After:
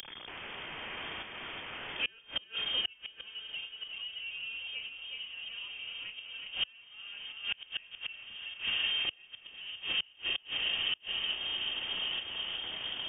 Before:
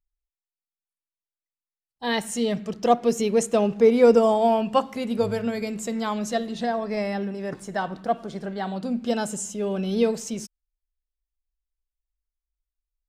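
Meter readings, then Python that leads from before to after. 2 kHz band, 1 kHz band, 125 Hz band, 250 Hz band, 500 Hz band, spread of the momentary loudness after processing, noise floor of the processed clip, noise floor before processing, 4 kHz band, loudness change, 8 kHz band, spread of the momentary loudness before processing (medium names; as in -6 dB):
0.0 dB, -22.0 dB, -23.0 dB, -31.5 dB, -32.0 dB, 11 LU, -58 dBFS, under -85 dBFS, +7.5 dB, -11.5 dB, under -35 dB, 12 LU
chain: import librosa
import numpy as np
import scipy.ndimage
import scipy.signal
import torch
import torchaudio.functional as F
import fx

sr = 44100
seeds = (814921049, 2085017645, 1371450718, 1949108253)

y = x + 0.5 * 10.0 ** (-22.5 / 20.0) * np.sign(x)
y = fx.echo_diffused(y, sr, ms=1178, feedback_pct=44, wet_db=-4.5)
y = fx.tremolo_shape(y, sr, shape='saw_up', hz=0.82, depth_pct=80)
y = scipy.signal.sosfilt(scipy.signal.butter(4, 130.0, 'highpass', fs=sr, output='sos'), y)
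y = fx.dynamic_eq(y, sr, hz=640.0, q=0.85, threshold_db=-35.0, ratio=4.0, max_db=6)
y = fx.notch(y, sr, hz=430.0, q=12.0)
y = fx.doubler(y, sr, ms=33.0, db=-9.0)
y = fx.echo_feedback(y, sr, ms=372, feedback_pct=35, wet_db=-6.0)
y = fx.gate_flip(y, sr, shuts_db=-13.0, range_db=-31)
y = fx.freq_invert(y, sr, carrier_hz=3400)
y = fx.band_squash(y, sr, depth_pct=70)
y = y * 10.0 ** (-4.5 / 20.0)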